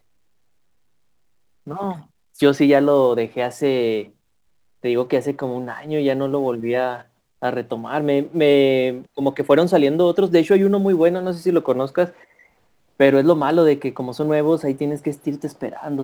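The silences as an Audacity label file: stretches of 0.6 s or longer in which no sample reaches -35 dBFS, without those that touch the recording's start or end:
4.040000	4.840000	silence
12.100000	13.000000	silence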